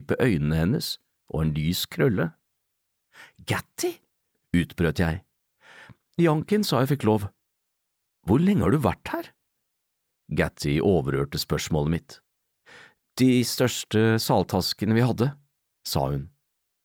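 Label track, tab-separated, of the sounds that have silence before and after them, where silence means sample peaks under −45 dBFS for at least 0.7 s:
3.150000	7.290000	sound
8.260000	9.300000	sound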